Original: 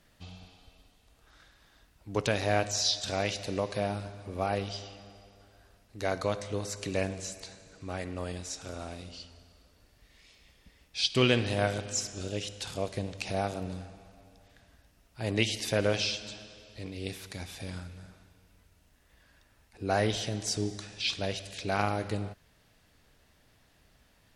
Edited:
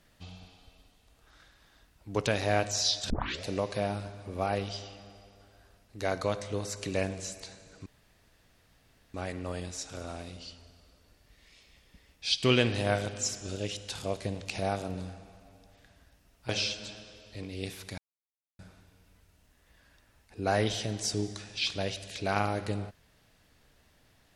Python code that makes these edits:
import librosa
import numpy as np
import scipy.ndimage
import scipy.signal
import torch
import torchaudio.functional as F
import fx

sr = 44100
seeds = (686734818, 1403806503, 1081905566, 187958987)

y = fx.edit(x, sr, fx.tape_start(start_s=3.1, length_s=0.34),
    fx.insert_room_tone(at_s=7.86, length_s=1.28),
    fx.cut(start_s=15.21, length_s=0.71),
    fx.silence(start_s=17.41, length_s=0.61), tone=tone)